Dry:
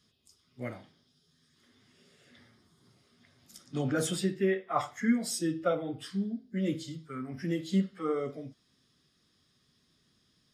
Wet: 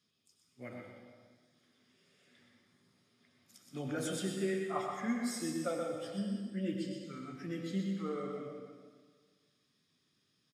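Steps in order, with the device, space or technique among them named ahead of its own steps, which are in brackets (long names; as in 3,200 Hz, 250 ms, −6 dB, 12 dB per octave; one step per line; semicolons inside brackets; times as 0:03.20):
PA in a hall (high-pass filter 130 Hz; parametric band 2,400 Hz +6 dB 0.22 octaves; single-tap delay 124 ms −6 dB; convolution reverb RT60 1.7 s, pre-delay 83 ms, DRR 3.5 dB)
0:06.17–0:07.04: EQ curve with evenly spaced ripples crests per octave 1.3, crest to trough 8 dB
level −8.5 dB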